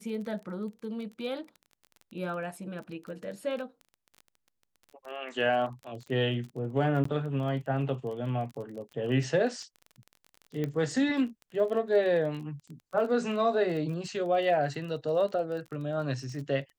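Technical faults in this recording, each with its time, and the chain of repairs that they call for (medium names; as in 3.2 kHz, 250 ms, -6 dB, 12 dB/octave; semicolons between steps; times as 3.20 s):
crackle 25 per s -38 dBFS
7.04–7.05 s: dropout 14 ms
10.64 s: pop -20 dBFS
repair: de-click; interpolate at 7.04 s, 14 ms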